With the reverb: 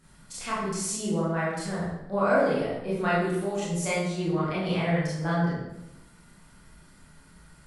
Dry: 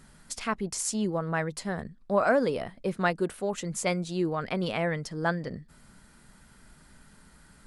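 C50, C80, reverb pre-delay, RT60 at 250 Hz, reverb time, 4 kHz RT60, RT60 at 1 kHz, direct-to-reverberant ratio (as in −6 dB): −0.5 dB, 3.0 dB, 23 ms, 1.1 s, 0.90 s, 0.70 s, 0.85 s, −9.0 dB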